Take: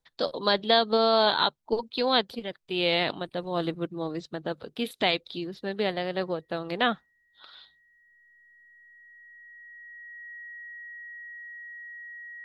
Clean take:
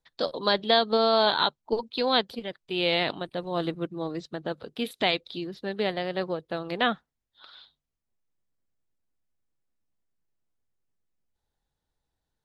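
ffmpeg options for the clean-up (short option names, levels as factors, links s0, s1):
-af "bandreject=f=1900:w=30"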